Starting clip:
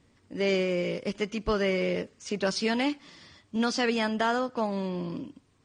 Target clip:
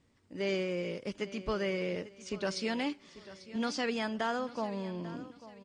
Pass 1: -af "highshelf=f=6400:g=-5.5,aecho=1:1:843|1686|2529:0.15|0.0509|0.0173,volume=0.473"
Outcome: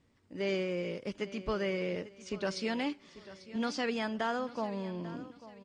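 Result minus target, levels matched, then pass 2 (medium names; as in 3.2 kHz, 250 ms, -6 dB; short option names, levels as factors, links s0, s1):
8 kHz band -2.5 dB
-af "aecho=1:1:843|1686|2529:0.15|0.0509|0.0173,volume=0.473"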